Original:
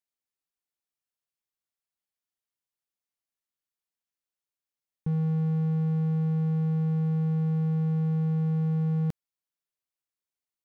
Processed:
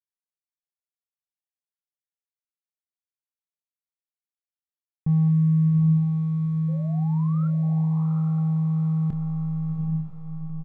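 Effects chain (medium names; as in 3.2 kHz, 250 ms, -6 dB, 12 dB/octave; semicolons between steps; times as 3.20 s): local Wiener filter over 15 samples; tone controls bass +8 dB, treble -14 dB; hysteresis with a dead band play -29.5 dBFS; 5.28–7.63 s: brick-wall FIR band-stop 480–1100 Hz; 6.68–7.48 s: painted sound rise 500–1400 Hz -43 dBFS; doubling 26 ms -9 dB; echo that smears into a reverb 802 ms, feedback 47%, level -5 dB; trim -1.5 dB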